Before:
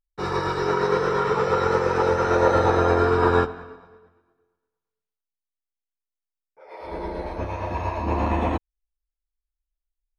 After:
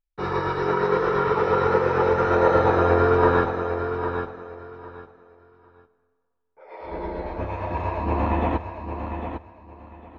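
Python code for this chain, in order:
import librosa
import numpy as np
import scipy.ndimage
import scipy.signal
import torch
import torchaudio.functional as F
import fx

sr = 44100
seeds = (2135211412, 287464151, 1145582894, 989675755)

y = scipy.signal.sosfilt(scipy.signal.butter(2, 3200.0, 'lowpass', fs=sr, output='sos'), x)
y = fx.echo_feedback(y, sr, ms=803, feedback_pct=21, wet_db=-8.0)
y = fx.rev_freeverb(y, sr, rt60_s=2.5, hf_ratio=0.45, predelay_ms=30, drr_db=19.5)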